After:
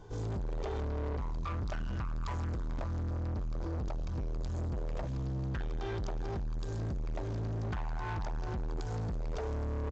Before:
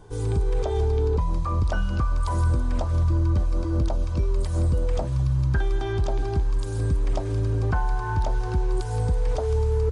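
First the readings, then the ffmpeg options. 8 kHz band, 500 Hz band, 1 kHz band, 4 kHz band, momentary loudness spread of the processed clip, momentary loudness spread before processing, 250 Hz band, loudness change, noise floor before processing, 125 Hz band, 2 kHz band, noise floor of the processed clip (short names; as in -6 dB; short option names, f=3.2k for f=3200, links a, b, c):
-13.0 dB, -12.5 dB, -10.5 dB, -9.5 dB, 2 LU, 3 LU, -9.0 dB, -12.0 dB, -28 dBFS, -12.5 dB, -10.5 dB, -36 dBFS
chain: -filter_complex "[0:a]asplit=2[a][b];[b]adelay=174.9,volume=-20dB,highshelf=f=4k:g=-3.94[c];[a][c]amix=inputs=2:normalize=0,aresample=16000,asoftclip=type=tanh:threshold=-29.5dB,aresample=44100,volume=-3.5dB"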